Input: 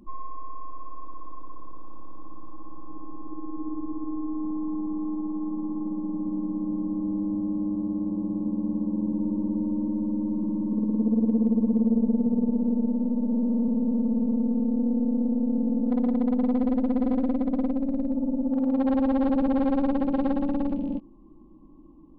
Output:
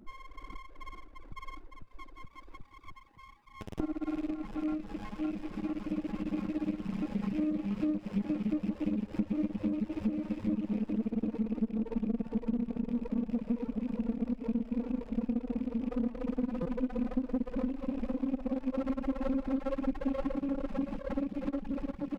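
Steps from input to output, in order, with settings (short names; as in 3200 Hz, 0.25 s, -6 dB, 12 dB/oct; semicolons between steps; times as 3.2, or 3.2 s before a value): rattling part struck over -37 dBFS, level -35 dBFS; 1.32–3.8 HPF 1400 Hz 24 dB/oct; bouncing-ball echo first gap 0.5 s, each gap 0.85×, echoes 5; reverb removal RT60 1.2 s; AGC gain up to 14.5 dB; flange 1.1 Hz, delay 4.6 ms, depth 2 ms, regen -82%; compressor 5:1, threshold -28 dBFS, peak gain reduction 16 dB; reverb removal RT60 1.2 s; stuck buffer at 16.62, samples 256, times 5; running maximum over 17 samples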